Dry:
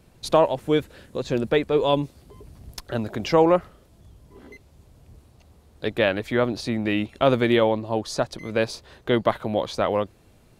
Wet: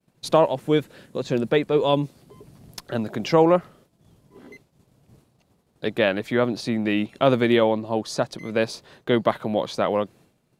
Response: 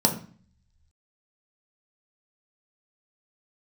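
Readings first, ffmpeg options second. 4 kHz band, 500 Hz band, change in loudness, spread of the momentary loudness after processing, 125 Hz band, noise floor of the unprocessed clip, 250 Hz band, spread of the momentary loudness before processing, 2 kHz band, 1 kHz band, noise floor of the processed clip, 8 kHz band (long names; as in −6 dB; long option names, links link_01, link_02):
0.0 dB, +0.5 dB, +0.5 dB, 12 LU, +0.5 dB, −56 dBFS, +1.5 dB, 12 LU, 0.0 dB, 0.0 dB, −66 dBFS, 0.0 dB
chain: -af "agate=range=-33dB:threshold=-46dB:ratio=3:detection=peak,lowshelf=frequency=100:width_type=q:width=1.5:gain=-11.5"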